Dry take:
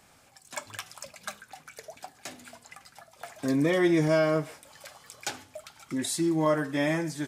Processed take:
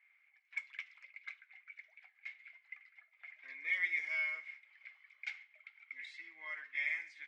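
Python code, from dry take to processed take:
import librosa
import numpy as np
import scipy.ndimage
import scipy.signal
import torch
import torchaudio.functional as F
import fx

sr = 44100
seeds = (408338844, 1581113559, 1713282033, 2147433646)

y = fx.ladder_bandpass(x, sr, hz=2200.0, resonance_pct=90)
y = fx.env_lowpass(y, sr, base_hz=2000.0, full_db=-32.5)
y = y * 10.0 ** (-1.5 / 20.0)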